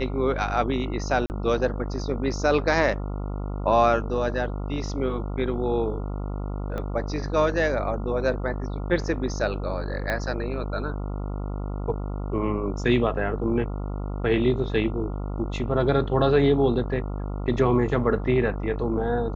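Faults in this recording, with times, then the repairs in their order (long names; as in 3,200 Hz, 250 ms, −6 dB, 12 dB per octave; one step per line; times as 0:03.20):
mains buzz 50 Hz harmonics 28 −30 dBFS
0:01.26–0:01.30: drop-out 39 ms
0:06.78: click −20 dBFS
0:10.10: click −14 dBFS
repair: click removal
hum removal 50 Hz, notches 28
repair the gap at 0:01.26, 39 ms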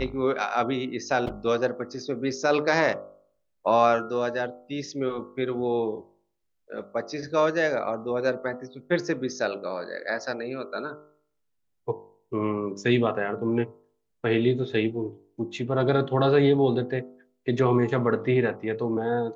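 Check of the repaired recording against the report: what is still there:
0:06.78: click
0:10.10: click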